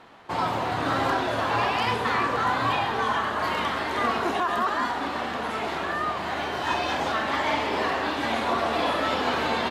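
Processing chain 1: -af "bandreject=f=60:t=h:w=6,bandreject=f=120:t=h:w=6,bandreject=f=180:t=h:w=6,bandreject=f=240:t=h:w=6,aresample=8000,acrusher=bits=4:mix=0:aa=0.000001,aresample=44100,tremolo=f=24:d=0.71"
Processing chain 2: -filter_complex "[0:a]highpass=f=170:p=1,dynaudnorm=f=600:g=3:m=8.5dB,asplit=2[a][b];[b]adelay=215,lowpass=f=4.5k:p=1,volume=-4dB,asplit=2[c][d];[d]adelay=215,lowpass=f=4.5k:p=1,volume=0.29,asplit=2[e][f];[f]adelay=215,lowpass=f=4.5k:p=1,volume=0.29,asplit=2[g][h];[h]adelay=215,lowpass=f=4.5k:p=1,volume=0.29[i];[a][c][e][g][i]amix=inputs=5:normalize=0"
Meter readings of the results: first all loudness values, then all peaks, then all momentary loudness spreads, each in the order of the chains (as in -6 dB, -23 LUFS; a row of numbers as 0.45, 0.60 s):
-28.0, -16.5 LUFS; -13.0, -3.5 dBFS; 4, 5 LU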